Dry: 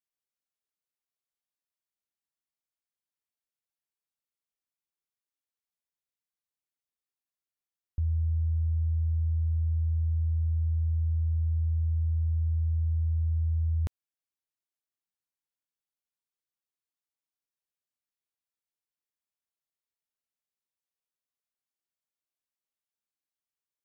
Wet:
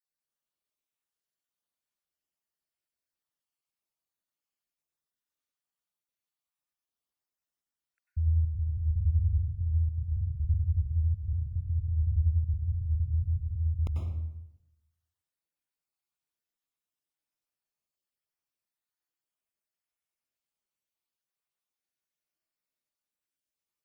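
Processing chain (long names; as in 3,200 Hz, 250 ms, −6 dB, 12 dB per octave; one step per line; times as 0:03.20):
time-frequency cells dropped at random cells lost 45%
convolution reverb RT60 0.85 s, pre-delay 88 ms, DRR −2 dB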